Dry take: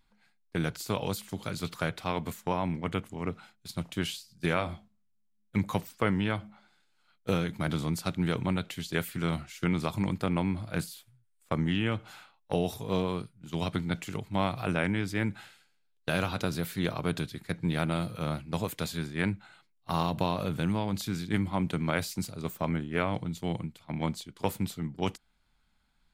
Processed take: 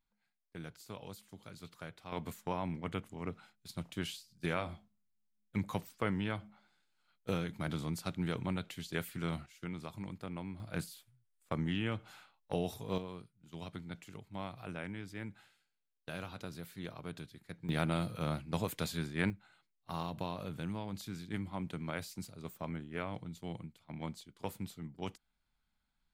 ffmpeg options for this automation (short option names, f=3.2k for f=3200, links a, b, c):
-af "asetnsamples=n=441:p=0,asendcmd='2.12 volume volume -7dB;9.46 volume volume -14dB;10.6 volume volume -6.5dB;12.98 volume volume -14dB;17.69 volume volume -3.5dB;19.3 volume volume -10.5dB',volume=-16dB"